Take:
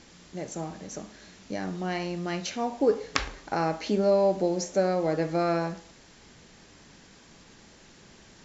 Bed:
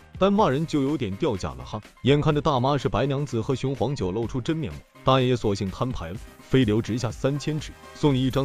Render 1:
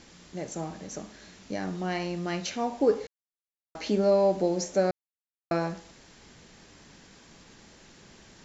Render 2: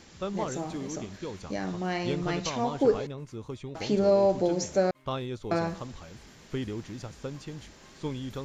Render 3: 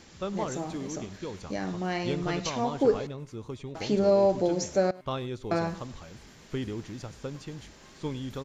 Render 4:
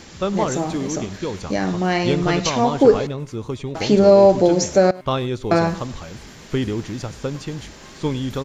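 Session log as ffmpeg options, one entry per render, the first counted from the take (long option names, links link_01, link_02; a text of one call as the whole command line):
ffmpeg -i in.wav -filter_complex "[0:a]asplit=5[link_01][link_02][link_03][link_04][link_05];[link_01]atrim=end=3.07,asetpts=PTS-STARTPTS,afade=type=out:start_time=3.066:duration=0.004:curve=hsin[link_06];[link_02]atrim=start=3.07:end=3.75,asetpts=PTS-STARTPTS,volume=0[link_07];[link_03]atrim=start=3.75:end=4.91,asetpts=PTS-STARTPTS,afade=type=in:duration=0.004:curve=hsin,afade=type=out:start_time=1.156:duration=0.004:curve=hsin[link_08];[link_04]atrim=start=4.91:end=5.51,asetpts=PTS-STARTPTS,volume=0[link_09];[link_05]atrim=start=5.51,asetpts=PTS-STARTPTS,afade=type=in:duration=0.004:curve=hsin[link_10];[link_06][link_07][link_08][link_09][link_10]concat=n=5:v=0:a=1" out.wav
ffmpeg -i in.wav -i bed.wav -filter_complex "[1:a]volume=-13.5dB[link_01];[0:a][link_01]amix=inputs=2:normalize=0" out.wav
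ffmpeg -i in.wav -af "aecho=1:1:101:0.0891" out.wav
ffmpeg -i in.wav -af "volume=11dB,alimiter=limit=-3dB:level=0:latency=1" out.wav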